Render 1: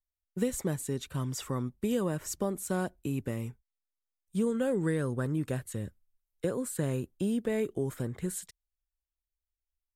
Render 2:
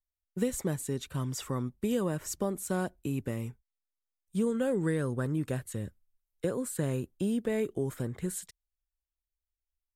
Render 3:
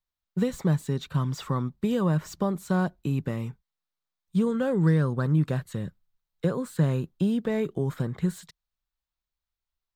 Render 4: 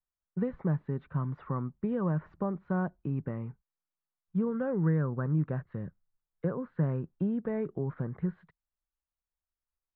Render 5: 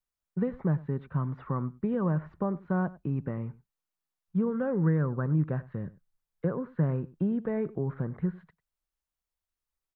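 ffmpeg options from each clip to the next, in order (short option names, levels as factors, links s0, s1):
-af anull
-filter_complex "[0:a]equalizer=f=1100:w=0.95:g=8,acrossover=split=1400[s0][s1];[s1]asoftclip=type=tanh:threshold=0.015[s2];[s0][s2]amix=inputs=2:normalize=0,equalizer=f=160:t=o:w=0.67:g=12,equalizer=f=4000:t=o:w=0.67:g=7,equalizer=f=10000:t=o:w=0.67:g=-9"
-af "lowpass=f=1800:w=0.5412,lowpass=f=1800:w=1.3066,volume=0.531"
-af "aecho=1:1:97:0.1,volume=1.26"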